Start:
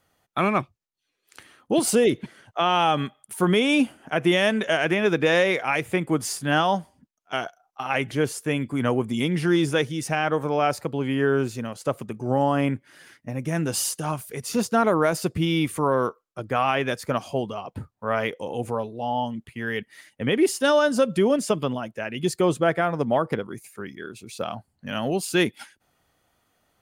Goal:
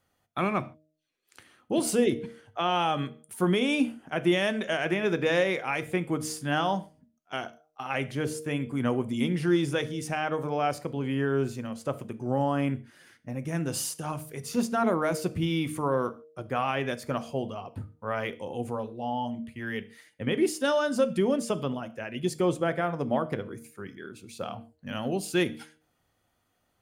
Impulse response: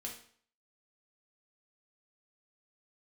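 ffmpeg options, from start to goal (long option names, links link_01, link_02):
-filter_complex "[0:a]bandreject=frequency=155.1:width_type=h:width=4,bandreject=frequency=310.2:width_type=h:width=4,bandreject=frequency=465.3:width_type=h:width=4,bandreject=frequency=620.4:width_type=h:width=4,asplit=2[link_01][link_02];[1:a]atrim=start_sample=2205,afade=type=out:start_time=0.2:duration=0.01,atrim=end_sample=9261,lowshelf=frequency=420:gain=9[link_03];[link_02][link_03]afir=irnorm=-1:irlink=0,volume=-7.5dB[link_04];[link_01][link_04]amix=inputs=2:normalize=0,volume=-8dB"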